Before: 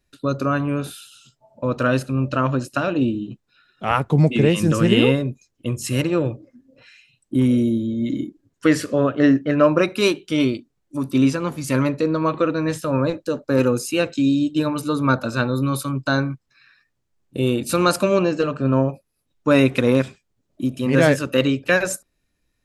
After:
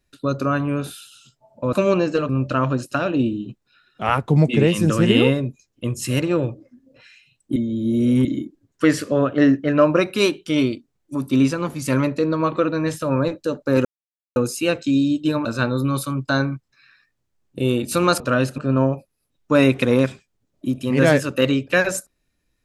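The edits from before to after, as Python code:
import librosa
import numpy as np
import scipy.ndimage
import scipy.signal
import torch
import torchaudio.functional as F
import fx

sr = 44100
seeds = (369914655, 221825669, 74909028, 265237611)

y = fx.edit(x, sr, fx.swap(start_s=1.73, length_s=0.38, other_s=17.98, other_length_s=0.56),
    fx.reverse_span(start_s=7.38, length_s=0.69),
    fx.insert_silence(at_s=13.67, length_s=0.51),
    fx.cut(start_s=14.76, length_s=0.47), tone=tone)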